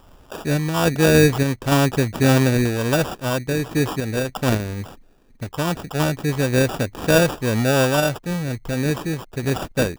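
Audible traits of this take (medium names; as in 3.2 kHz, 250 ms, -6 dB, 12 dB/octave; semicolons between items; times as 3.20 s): aliases and images of a low sample rate 2.1 kHz, jitter 0%; random-step tremolo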